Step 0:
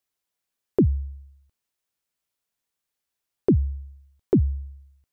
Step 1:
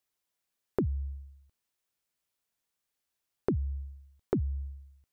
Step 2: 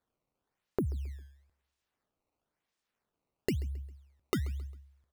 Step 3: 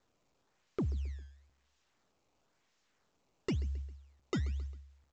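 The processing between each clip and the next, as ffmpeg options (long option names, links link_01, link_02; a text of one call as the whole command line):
ffmpeg -i in.wav -af "acompressor=threshold=-26dB:ratio=6,volume=-1dB" out.wav
ffmpeg -i in.wav -af "acrusher=samples=15:mix=1:aa=0.000001:lfo=1:lforange=24:lforate=0.99,aecho=1:1:134|268|402:0.0891|0.0348|0.0136,volume=-2.5dB" out.wav
ffmpeg -i in.wav -af "aresample=16000,asoftclip=type=tanh:threshold=-28.5dB,aresample=44100,volume=1dB" -ar 16000 -c:a pcm_mulaw out.wav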